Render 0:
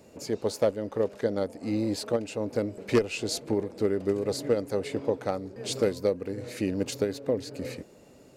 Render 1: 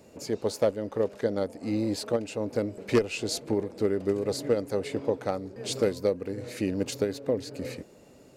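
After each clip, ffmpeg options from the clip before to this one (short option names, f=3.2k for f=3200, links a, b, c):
-af anull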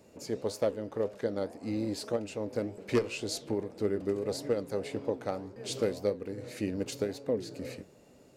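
-af "flanger=delay=9.4:depth=8.7:regen=82:speed=1.8:shape=sinusoidal"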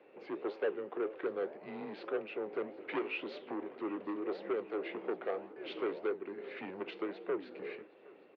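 -af "asoftclip=type=tanh:threshold=-28.5dB,aecho=1:1:764|1528|2292:0.075|0.0367|0.018,highpass=f=460:t=q:w=0.5412,highpass=f=460:t=q:w=1.307,lowpass=f=3.1k:t=q:w=0.5176,lowpass=f=3.1k:t=q:w=0.7071,lowpass=f=3.1k:t=q:w=1.932,afreqshift=-86,volume=2.5dB"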